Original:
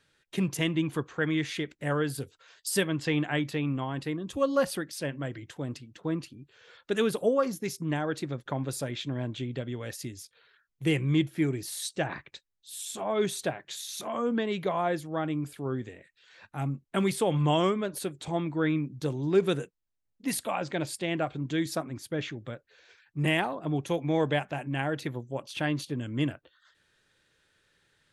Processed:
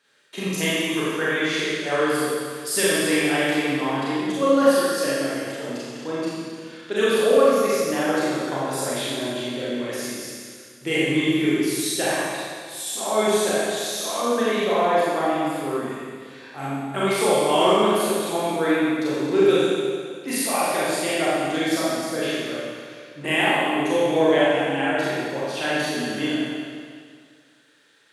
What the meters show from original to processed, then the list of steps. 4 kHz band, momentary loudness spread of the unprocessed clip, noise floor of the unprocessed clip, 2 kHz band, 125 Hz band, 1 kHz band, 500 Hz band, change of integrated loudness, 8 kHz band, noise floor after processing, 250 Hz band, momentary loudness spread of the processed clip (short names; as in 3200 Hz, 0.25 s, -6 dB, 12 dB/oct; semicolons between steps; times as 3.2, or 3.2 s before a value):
+10.5 dB, 12 LU, -78 dBFS, +10.5 dB, -3.0 dB, +10.5 dB, +10.0 dB, +8.5 dB, +10.5 dB, -47 dBFS, +6.5 dB, 13 LU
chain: HPF 300 Hz 12 dB/oct; Schroeder reverb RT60 2 s, combs from 29 ms, DRR -9 dB; gain +1 dB